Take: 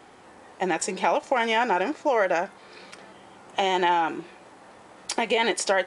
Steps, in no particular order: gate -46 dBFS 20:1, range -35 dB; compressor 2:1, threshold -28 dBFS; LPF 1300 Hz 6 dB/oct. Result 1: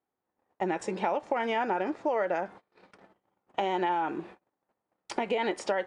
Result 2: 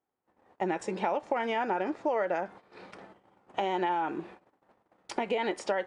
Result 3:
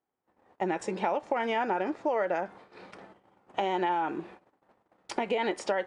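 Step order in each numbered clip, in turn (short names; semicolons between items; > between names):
LPF > compressor > gate; compressor > gate > LPF; gate > LPF > compressor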